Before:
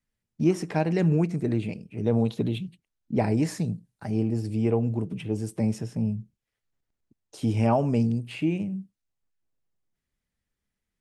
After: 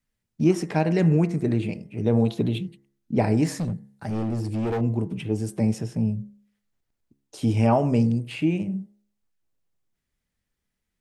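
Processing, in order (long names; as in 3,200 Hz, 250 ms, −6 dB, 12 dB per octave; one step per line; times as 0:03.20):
hum removal 68.59 Hz, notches 31
0:03.47–0:04.81: hard clipping −26 dBFS, distortion −15 dB
level +3 dB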